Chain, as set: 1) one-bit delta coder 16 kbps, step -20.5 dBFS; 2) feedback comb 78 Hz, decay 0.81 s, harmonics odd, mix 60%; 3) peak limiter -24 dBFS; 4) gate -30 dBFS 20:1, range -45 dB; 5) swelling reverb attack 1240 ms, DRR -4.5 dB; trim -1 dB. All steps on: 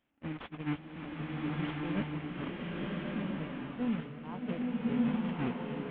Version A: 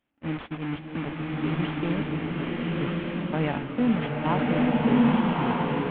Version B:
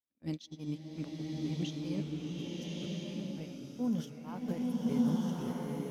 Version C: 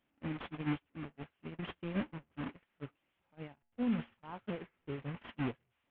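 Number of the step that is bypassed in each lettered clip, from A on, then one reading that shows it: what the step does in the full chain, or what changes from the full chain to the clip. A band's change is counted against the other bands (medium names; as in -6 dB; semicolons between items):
3, mean gain reduction 2.0 dB; 1, 2 kHz band -10.0 dB; 5, loudness change -5.5 LU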